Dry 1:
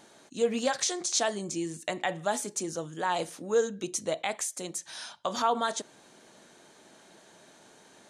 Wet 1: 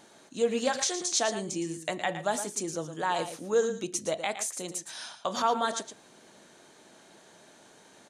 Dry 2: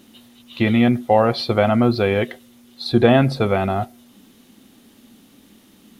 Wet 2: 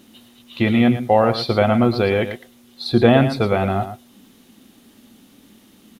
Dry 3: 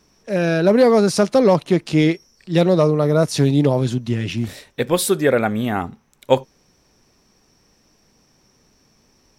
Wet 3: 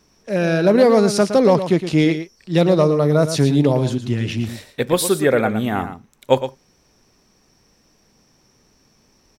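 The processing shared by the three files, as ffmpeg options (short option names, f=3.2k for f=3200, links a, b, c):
-af "aecho=1:1:114:0.299"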